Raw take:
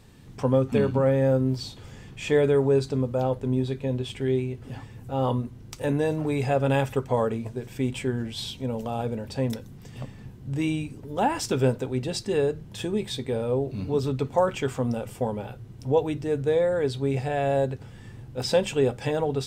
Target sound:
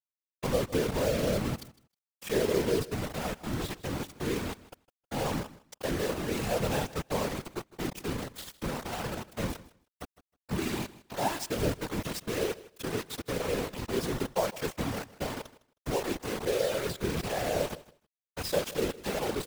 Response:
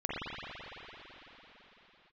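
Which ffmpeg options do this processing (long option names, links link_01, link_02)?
-filter_complex "[0:a]asettb=1/sr,asplit=3[link_01][link_02][link_03];[link_01]atrim=end=3.134[link_04];[link_02]atrim=start=3.13:end=3.97,asetpts=PTS-STARTPTS,afade=type=in:duration=0.004:curve=qsin,afade=type=out:start_time=0.836:duration=0.004:curve=qsin,equalizer=frequency=250:width_type=o:width=1:gain=-3,equalizer=frequency=500:width_type=o:width=1:gain=-8,equalizer=frequency=2000:width_type=o:width=1:gain=7[link_05];[link_03]atrim=start=3.966[link_06];[link_04][link_05]acrossfade=duration=0.004:curve1=hsin:curve2=qsin[link_07];[link_07][link_06]acrossfade=duration=0.004:curve1=qsin:curve2=hsin,asplit=2[link_08][link_09];[link_09]asoftclip=type=tanh:threshold=-21.5dB,volume=-12dB[link_10];[link_08][link_10]amix=inputs=2:normalize=0,flanger=delay=9.1:depth=8.5:regen=-58:speed=1.8:shape=sinusoidal,acrusher=bits=4:mix=0:aa=0.000001,afftfilt=real='hypot(re,im)*cos(2*PI*random(0))':imag='hypot(re,im)*sin(2*PI*random(1))':win_size=512:overlap=0.75,asplit=2[link_11][link_12];[link_12]aecho=0:1:157|314:0.112|0.018[link_13];[link_11][link_13]amix=inputs=2:normalize=0,volume=1.5dB"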